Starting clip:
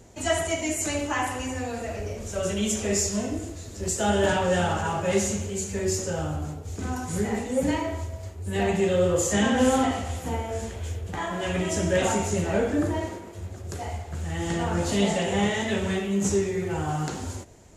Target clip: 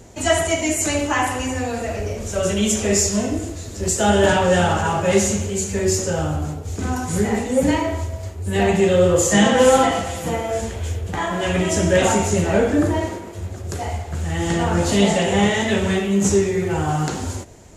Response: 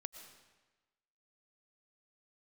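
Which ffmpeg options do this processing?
-filter_complex "[0:a]asettb=1/sr,asplit=3[a][b][c];[a]atrim=end=9.314[d];[b]atrim=start=9.31:end=10.61,asetpts=PTS-STARTPTS,afade=t=in:d=0.004:c=qsin,afade=t=out:st=1.296:d=0.004:c=qsin,aecho=1:1:6:0.62,atrim=end_sample=57330[e];[c]atrim=start=10.606[f];[d][e]acrossfade=d=0.004:c1=hsin:c2=qsin[g];[g][f]acrossfade=d=0.004:c1=qsin:c2=hsin,volume=7dB"

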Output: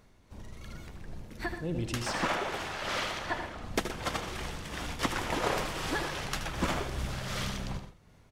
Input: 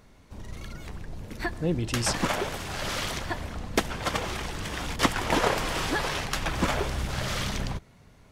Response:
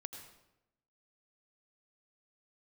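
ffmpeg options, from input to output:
-filter_complex "[0:a]asettb=1/sr,asplit=3[a][b][c];[a]atrim=end=2.024[d];[b]atrim=start=2.02:end=3.62,asetpts=PTS-STARTPTS,afade=t=in:d=0.004:c=qsin,afade=t=out:st=1.596:d=0.004:c=qsin,asplit=2[e][f];[f]highpass=f=720:p=1,volume=13dB,asoftclip=type=tanh:threshold=-13.5dB[g];[e][g]amix=inputs=2:normalize=0,lowpass=f=2.3k:p=1,volume=-6dB[h];[c]atrim=start=3.616[i];[d][h]acrossfade=d=0.004:c1=hsin:c2=qsin[j];[j][i]acrossfade=d=0.004:c1=qsin:c2=hsin,tremolo=f=2.7:d=0.38,aecho=1:1:75.8|122.4:0.282|0.251[k];[1:a]atrim=start_sample=2205,atrim=end_sample=3969[l];[k][l]afir=irnorm=-1:irlink=0"

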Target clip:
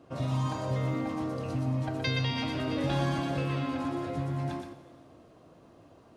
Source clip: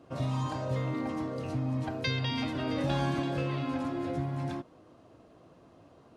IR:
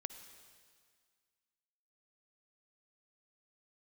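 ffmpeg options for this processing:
-filter_complex "[0:a]asplit=2[a][b];[1:a]atrim=start_sample=2205,highshelf=f=8k:g=11,adelay=122[c];[b][c]afir=irnorm=-1:irlink=0,volume=-3.5dB[d];[a][d]amix=inputs=2:normalize=0"

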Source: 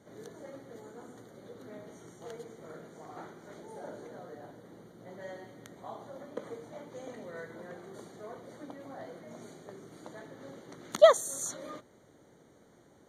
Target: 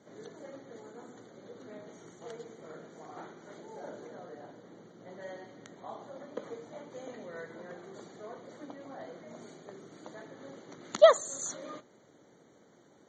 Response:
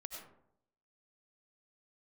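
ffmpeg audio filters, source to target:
-filter_complex "[0:a]highpass=140,asplit=2[a][b];[1:a]atrim=start_sample=2205,asetrate=79380,aresample=44100[c];[b][c]afir=irnorm=-1:irlink=0,volume=-15.5dB[d];[a][d]amix=inputs=2:normalize=0" -ar 48000 -c:a libmp3lame -b:a 32k

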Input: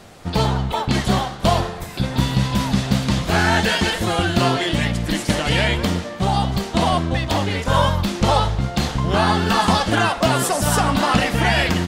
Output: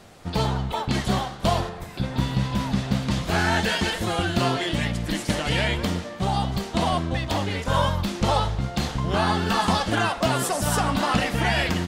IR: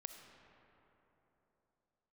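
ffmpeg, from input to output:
-filter_complex "[0:a]asettb=1/sr,asplit=3[a][b][c];[a]atrim=end=1.694[d];[b]atrim=start=1.69:end=3.11,asetpts=PTS-STARTPTS,afade=t=in:d=0.004:c=qsin,afade=t=out:st=1.416:d=0.004:c=qsin,highshelf=f=4.1k:g=-6[e];[c]atrim=start=3.106[f];[d][e]acrossfade=d=0.004:c1=hsin:c2=qsin[g];[g][f]acrossfade=d=0.004:c1=qsin:c2=hsin,volume=-5dB"

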